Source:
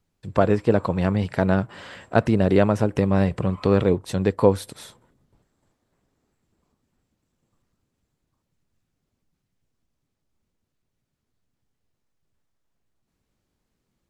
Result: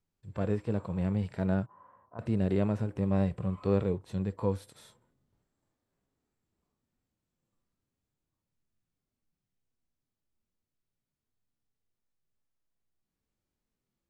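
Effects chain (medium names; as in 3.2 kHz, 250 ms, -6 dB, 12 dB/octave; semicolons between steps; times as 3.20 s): 1.66–2.19 s: four-pole ladder low-pass 1.1 kHz, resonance 80%; harmonic-percussive split percussive -14 dB; trim -7 dB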